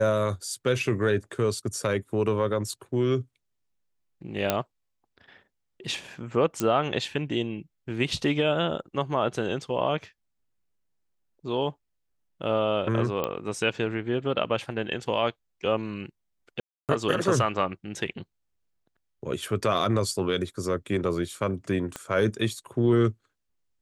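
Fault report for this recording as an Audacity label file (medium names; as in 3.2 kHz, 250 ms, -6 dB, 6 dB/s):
4.500000	4.500000	pop -7 dBFS
6.600000	6.600000	pop -11 dBFS
13.240000	13.240000	pop -14 dBFS
16.600000	16.890000	dropout 288 ms
21.960000	21.960000	pop -18 dBFS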